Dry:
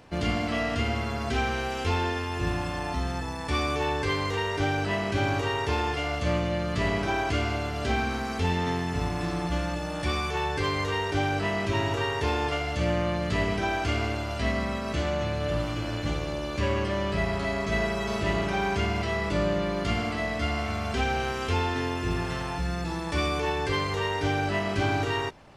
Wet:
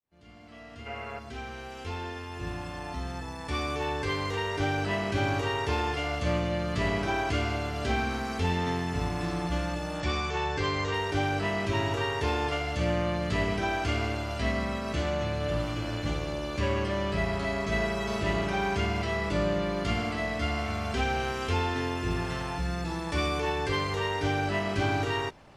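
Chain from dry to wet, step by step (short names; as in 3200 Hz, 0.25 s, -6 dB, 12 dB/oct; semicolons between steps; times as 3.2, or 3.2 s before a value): opening faded in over 4.86 s; 0.86–1.19 spectral gain 400–3000 Hz +10 dB; 10–10.94 steep low-pass 8000 Hz 72 dB/oct; gain -1.5 dB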